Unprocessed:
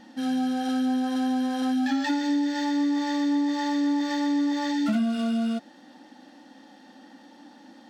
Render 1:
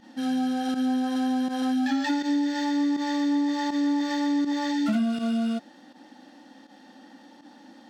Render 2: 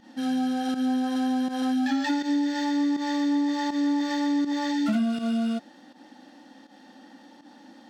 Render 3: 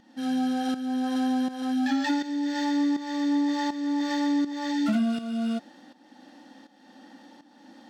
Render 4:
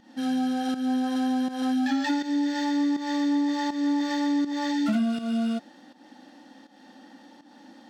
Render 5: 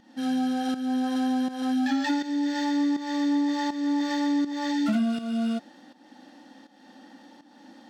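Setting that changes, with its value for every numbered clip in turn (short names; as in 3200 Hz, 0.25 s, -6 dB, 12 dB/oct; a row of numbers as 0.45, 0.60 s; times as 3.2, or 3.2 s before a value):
pump, release: 72, 106, 506, 223, 342 ms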